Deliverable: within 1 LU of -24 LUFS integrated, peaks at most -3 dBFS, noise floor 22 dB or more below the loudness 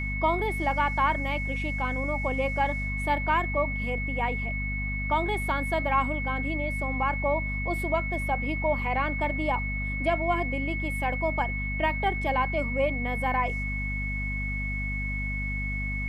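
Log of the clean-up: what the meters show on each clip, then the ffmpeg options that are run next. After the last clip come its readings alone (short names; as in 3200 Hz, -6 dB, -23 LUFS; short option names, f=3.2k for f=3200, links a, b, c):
hum 50 Hz; harmonics up to 250 Hz; hum level -29 dBFS; steady tone 2200 Hz; tone level -32 dBFS; loudness -28.0 LUFS; peak -13.0 dBFS; loudness target -24.0 LUFS
-> -af "bandreject=f=50:t=h:w=6,bandreject=f=100:t=h:w=6,bandreject=f=150:t=h:w=6,bandreject=f=200:t=h:w=6,bandreject=f=250:t=h:w=6"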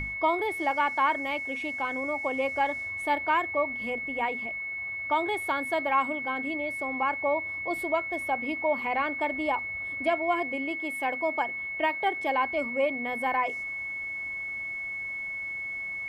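hum none; steady tone 2200 Hz; tone level -32 dBFS
-> -af "bandreject=f=2.2k:w=30"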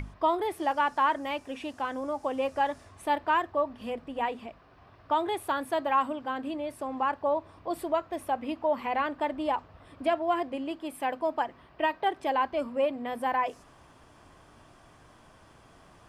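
steady tone none; loudness -30.5 LUFS; peak -15.5 dBFS; loudness target -24.0 LUFS
-> -af "volume=6.5dB"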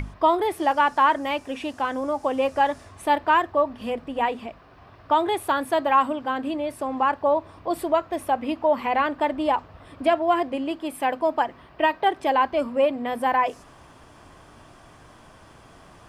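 loudness -24.0 LUFS; peak -9.0 dBFS; noise floor -50 dBFS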